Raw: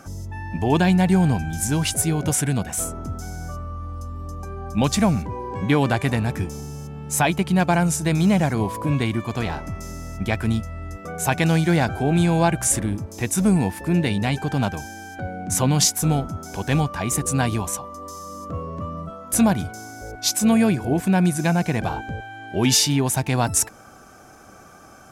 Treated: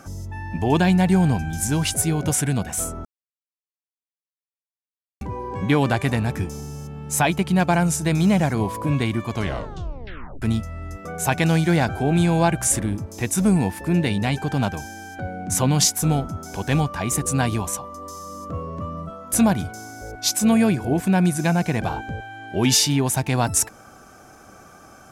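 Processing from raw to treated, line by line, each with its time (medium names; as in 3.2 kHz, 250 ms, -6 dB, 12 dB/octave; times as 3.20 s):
3.05–5.21 s: mute
9.30 s: tape stop 1.12 s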